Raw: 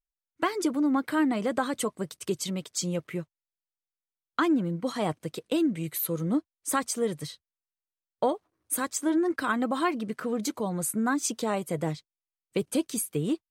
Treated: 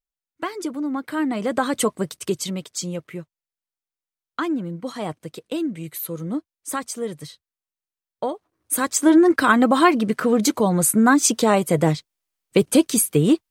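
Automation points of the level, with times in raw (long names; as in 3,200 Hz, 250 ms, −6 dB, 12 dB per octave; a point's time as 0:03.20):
0:01.01 −1 dB
0:01.86 +9 dB
0:03.09 0 dB
0:08.33 0 dB
0:09.06 +11.5 dB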